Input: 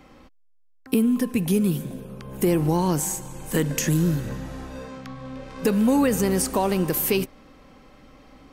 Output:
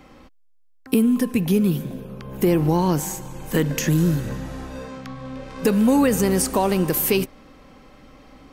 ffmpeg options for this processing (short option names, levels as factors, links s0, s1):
-filter_complex "[0:a]asettb=1/sr,asplit=3[s0][s1][s2];[s0]atrim=end=1.374[s3];[s1]atrim=start=1.37:end=3.98,asetpts=PTS-STARTPTS,afade=t=in:d=0.004:c=qsin,afade=t=out:st=2.606:d=0.004:c=qsin,equalizer=f=8900:t=o:w=0.79:g=-8[s4];[s2]atrim=start=3.976[s5];[s3][s4]acrossfade=d=0.004:c1=hsin:c2=qsin[s6];[s6][s5]acrossfade=d=0.004:c1=qsin:c2=hsin,volume=1.33"